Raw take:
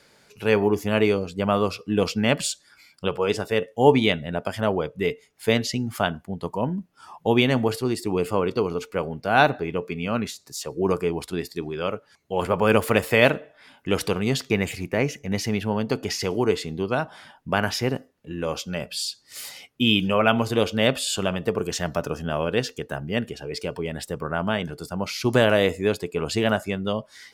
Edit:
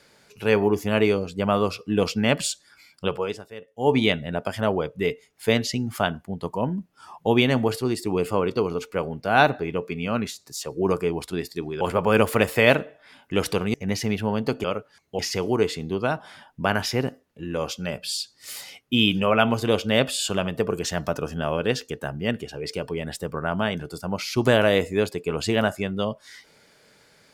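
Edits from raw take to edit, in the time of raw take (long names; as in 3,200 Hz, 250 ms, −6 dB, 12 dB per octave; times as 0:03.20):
0:03.15–0:03.99: duck −16.5 dB, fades 0.38 s quadratic
0:11.81–0:12.36: move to 0:16.07
0:14.29–0:15.17: remove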